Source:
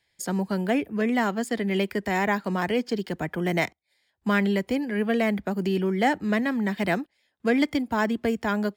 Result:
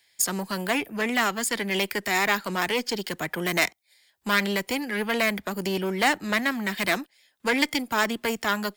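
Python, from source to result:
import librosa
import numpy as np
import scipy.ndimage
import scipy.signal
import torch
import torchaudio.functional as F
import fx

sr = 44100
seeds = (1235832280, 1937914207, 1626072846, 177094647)

y = fx.diode_clip(x, sr, knee_db=-25.0)
y = fx.tilt_eq(y, sr, slope=3.0)
y = y * librosa.db_to_amplitude(4.0)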